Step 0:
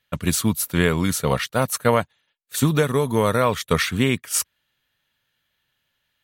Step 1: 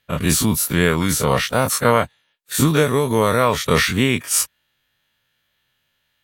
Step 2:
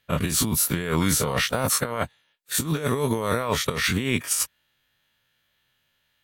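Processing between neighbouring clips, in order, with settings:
every event in the spectrogram widened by 60 ms
compressor with a negative ratio -19 dBFS, ratio -0.5; trim -4 dB

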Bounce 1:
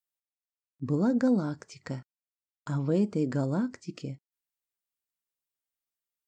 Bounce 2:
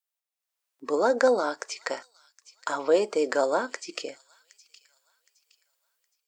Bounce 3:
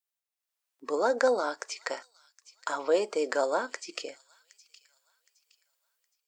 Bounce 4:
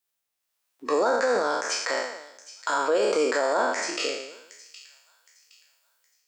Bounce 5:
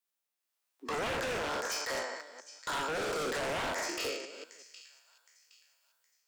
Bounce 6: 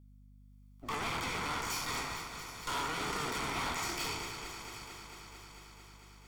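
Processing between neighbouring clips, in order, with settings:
high-pass 480 Hz 24 dB/octave; level rider gain up to 11.5 dB; feedback echo behind a high-pass 766 ms, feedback 32%, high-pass 3.2 kHz, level -15.5 dB; trim +1.5 dB
bass shelf 200 Hz -10.5 dB; trim -2 dB
spectral sustain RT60 0.86 s; peak limiter -20.5 dBFS, peak gain reduction 10 dB; trim +6 dB
chunks repeated in reverse 185 ms, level -11 dB; Chebyshev high-pass 160 Hz, order 10; wavefolder -23.5 dBFS; trim -5.5 dB
comb filter that takes the minimum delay 0.89 ms; echo whose repeats swap between lows and highs 112 ms, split 1.1 kHz, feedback 89%, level -9 dB; hum 50 Hz, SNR 18 dB

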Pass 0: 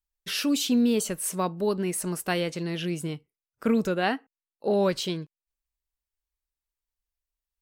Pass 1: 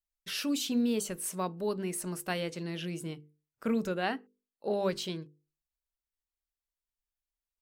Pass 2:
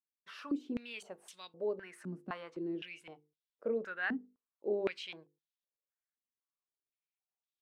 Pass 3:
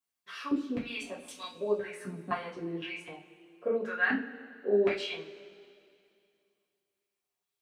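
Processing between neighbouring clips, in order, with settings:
hum notches 50/100/150/200/250/300/350/400/450/500 Hz; trim -6 dB
step-sequenced band-pass 3.9 Hz 240–3500 Hz; trim +4 dB
two-slope reverb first 0.31 s, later 2.5 s, from -21 dB, DRR -7 dB

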